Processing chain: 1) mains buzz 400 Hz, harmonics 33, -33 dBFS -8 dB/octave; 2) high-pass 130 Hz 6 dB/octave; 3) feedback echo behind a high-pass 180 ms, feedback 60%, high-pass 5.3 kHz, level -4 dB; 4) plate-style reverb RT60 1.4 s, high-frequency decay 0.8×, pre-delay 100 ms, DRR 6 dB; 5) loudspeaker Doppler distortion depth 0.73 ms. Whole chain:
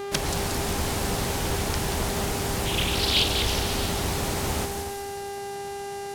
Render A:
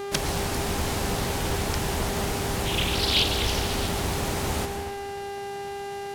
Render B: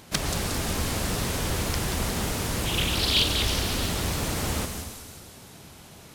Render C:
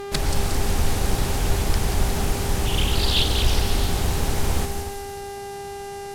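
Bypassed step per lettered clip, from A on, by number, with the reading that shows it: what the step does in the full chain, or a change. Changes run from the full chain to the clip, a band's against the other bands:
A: 3, 8 kHz band -2.0 dB; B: 1, 500 Hz band -4.0 dB; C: 2, 125 Hz band +5.0 dB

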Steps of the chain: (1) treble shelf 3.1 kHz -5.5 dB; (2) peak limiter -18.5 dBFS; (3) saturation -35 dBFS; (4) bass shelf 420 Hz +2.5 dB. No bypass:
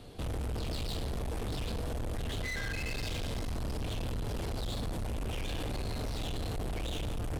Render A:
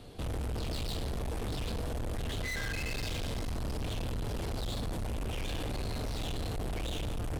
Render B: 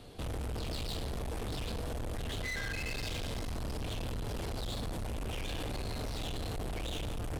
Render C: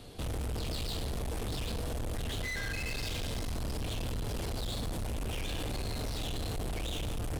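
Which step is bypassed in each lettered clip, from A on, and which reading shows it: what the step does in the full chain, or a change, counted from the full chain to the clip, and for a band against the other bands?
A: 2, mean gain reduction 1.5 dB; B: 4, loudness change -1.5 LU; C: 1, 8 kHz band +4.0 dB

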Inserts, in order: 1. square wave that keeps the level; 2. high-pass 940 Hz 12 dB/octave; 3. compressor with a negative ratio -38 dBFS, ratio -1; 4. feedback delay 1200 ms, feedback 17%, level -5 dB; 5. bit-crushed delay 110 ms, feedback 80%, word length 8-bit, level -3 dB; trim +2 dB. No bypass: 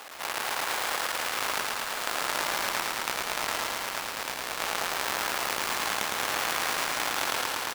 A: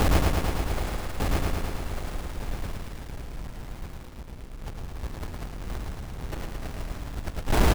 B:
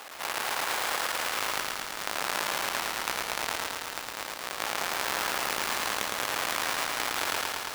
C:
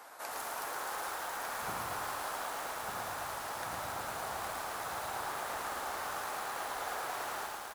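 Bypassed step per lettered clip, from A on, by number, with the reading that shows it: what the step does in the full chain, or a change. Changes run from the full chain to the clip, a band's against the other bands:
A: 2, 125 Hz band +29.5 dB; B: 4, momentary loudness spread change +1 LU; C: 1, distortion -5 dB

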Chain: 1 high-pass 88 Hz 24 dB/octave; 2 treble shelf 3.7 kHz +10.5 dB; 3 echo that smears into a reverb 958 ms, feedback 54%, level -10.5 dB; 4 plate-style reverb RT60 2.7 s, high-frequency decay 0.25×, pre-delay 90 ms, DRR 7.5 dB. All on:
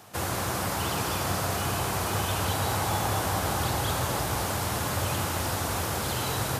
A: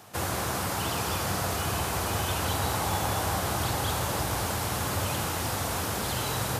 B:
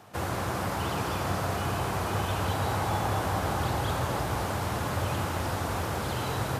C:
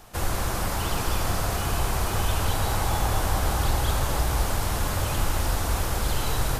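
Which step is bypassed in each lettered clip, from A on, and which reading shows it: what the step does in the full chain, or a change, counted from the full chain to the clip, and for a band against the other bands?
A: 4, echo-to-direct -5.0 dB to -9.0 dB; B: 2, 8 kHz band -8.5 dB; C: 1, 125 Hz band +3.0 dB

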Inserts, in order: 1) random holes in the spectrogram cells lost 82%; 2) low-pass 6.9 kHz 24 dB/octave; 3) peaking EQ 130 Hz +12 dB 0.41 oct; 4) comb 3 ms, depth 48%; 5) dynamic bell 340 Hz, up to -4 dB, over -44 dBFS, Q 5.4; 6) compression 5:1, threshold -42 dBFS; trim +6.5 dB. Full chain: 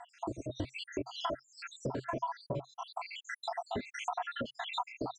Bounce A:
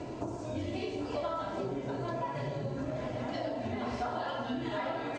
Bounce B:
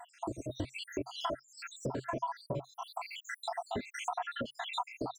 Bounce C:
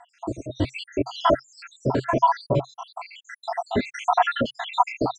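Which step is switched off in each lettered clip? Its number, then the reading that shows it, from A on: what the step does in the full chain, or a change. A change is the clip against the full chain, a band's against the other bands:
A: 1, 8 kHz band -7.5 dB; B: 2, 8 kHz band +3.0 dB; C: 6, mean gain reduction 10.0 dB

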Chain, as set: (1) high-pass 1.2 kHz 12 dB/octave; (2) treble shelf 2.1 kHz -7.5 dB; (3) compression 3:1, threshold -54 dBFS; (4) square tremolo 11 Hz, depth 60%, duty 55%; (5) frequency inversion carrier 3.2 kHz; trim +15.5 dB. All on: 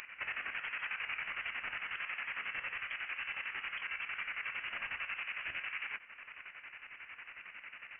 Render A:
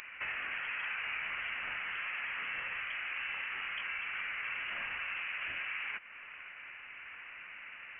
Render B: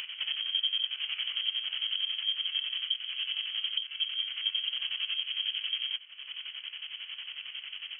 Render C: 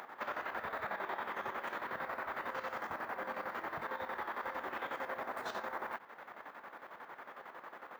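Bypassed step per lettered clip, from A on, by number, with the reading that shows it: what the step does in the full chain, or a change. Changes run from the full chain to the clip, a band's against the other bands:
4, crest factor change -2.0 dB; 1, loudness change +8.0 LU; 5, 500 Hz band +22.5 dB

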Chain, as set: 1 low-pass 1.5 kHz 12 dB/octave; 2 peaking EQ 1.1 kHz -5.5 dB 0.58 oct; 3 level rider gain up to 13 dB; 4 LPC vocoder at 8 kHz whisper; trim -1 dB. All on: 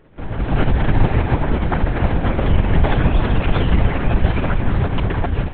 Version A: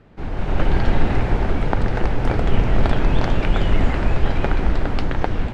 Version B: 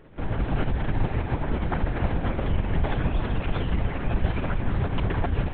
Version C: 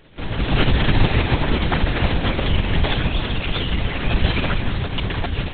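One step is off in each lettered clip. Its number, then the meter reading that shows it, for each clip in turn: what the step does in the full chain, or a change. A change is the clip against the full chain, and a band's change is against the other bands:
4, 125 Hz band -2.5 dB; 3, momentary loudness spread change -2 LU; 1, 2 kHz band +5.0 dB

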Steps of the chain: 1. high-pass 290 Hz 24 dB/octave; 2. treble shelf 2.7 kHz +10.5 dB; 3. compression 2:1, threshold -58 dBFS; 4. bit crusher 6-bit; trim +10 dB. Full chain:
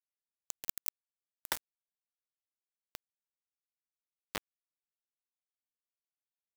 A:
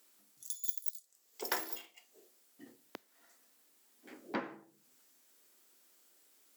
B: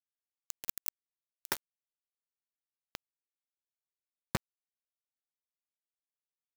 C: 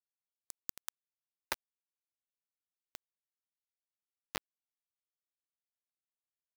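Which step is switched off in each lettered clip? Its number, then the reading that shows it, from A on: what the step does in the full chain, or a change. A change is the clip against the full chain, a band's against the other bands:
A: 4, crest factor change -3.0 dB; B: 1, 125 Hz band +14.5 dB; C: 2, 8 kHz band -4.0 dB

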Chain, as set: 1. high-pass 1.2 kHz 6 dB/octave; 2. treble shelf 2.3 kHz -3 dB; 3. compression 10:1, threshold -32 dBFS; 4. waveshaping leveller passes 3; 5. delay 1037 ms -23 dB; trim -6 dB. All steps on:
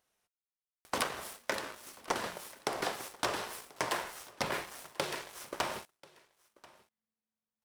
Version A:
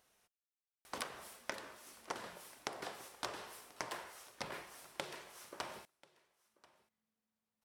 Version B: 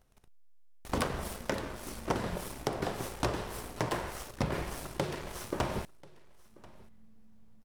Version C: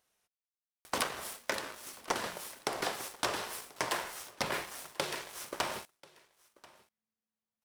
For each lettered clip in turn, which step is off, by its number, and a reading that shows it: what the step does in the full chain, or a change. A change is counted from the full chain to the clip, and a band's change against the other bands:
4, crest factor change +9.5 dB; 1, 125 Hz band +15.5 dB; 2, momentary loudness spread change -1 LU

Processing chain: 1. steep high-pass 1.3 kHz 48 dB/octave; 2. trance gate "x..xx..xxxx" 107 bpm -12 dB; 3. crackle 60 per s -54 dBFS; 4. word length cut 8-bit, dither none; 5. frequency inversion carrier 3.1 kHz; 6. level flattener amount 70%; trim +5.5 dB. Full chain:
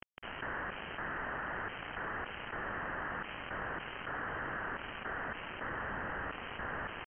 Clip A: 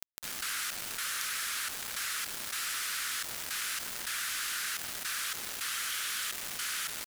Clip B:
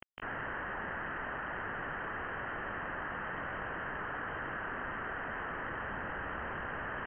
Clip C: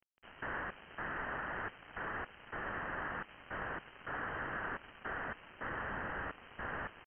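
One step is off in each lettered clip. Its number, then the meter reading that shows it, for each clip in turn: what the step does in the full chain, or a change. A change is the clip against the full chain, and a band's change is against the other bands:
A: 5, 2 kHz band +11.5 dB; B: 2, momentary loudness spread change -2 LU; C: 6, momentary loudness spread change +3 LU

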